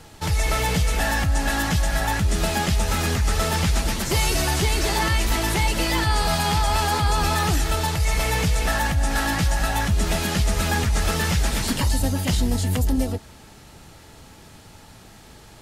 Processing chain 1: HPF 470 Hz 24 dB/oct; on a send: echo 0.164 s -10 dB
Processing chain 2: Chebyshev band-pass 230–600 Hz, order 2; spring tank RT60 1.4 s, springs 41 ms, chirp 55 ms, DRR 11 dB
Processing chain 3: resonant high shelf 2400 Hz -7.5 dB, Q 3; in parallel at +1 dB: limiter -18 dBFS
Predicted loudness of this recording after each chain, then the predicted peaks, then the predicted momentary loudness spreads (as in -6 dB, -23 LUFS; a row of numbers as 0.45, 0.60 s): -24.5, -31.5, -17.5 LUFS; -11.5, -16.5, -6.5 dBFS; 6, 6, 2 LU